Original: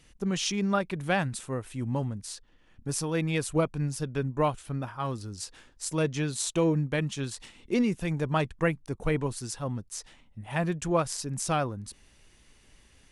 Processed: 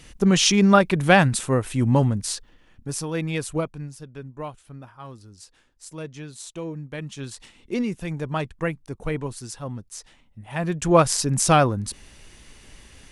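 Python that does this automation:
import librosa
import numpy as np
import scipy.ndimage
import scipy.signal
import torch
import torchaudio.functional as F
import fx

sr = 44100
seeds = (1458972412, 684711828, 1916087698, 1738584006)

y = fx.gain(x, sr, db=fx.line((2.31, 11.5), (2.88, 1.5), (3.52, 1.5), (3.98, -8.0), (6.78, -8.0), (7.31, 0.0), (10.53, 0.0), (11.01, 11.0)))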